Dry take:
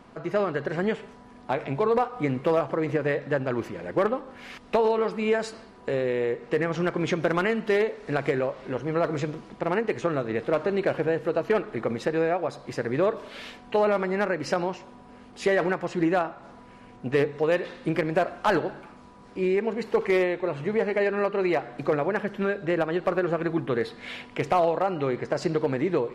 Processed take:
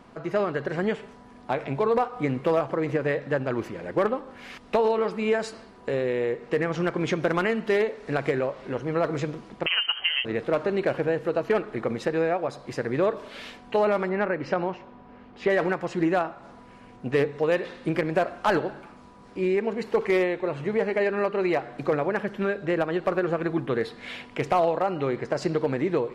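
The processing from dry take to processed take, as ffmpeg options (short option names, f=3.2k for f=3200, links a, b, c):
-filter_complex "[0:a]asettb=1/sr,asplit=3[a][b][c];[a]atrim=end=9.664[d];[b]atrim=start=9.66:end=10.25,asetpts=PTS-STARTPTS,afade=t=in:d=0.004:c=qsin,afade=t=out:st=0.586:d=0.004:c=qsin,lowpass=f=2.8k:t=q:w=0.5098,lowpass=f=2.8k:t=q:w=0.6013,lowpass=f=2.8k:t=q:w=0.9,lowpass=f=2.8k:t=q:w=2.563,afreqshift=-3300[e];[c]atrim=start=10.246[f];[d][e]acrossfade=d=0.004:c1=hsin:c2=qsin[g];[g][f]acrossfade=d=0.004:c1=qsin:c2=hsin,asettb=1/sr,asplit=3[h][i][j];[h]atrim=end=14.094[k];[i]atrim=start=14.09:end=15.5,asetpts=PTS-STARTPTS,afade=t=in:d=0.004:c=qsin,afade=t=out:st=1.406:d=0.004:c=qsin,lowpass=2.9k[l];[j]atrim=start=15.496[m];[k][l]acrossfade=d=0.004:c1=hsin:c2=qsin[n];[n][m]acrossfade=d=0.004:c1=qsin:c2=hsin"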